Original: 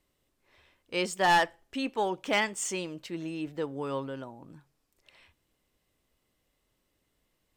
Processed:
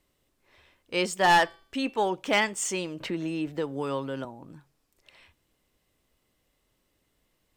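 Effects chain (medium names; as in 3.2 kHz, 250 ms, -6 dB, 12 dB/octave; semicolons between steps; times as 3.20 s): 1.13–1.99 s: de-hum 384.6 Hz, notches 13; 3.00–4.25 s: three bands compressed up and down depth 70%; trim +3 dB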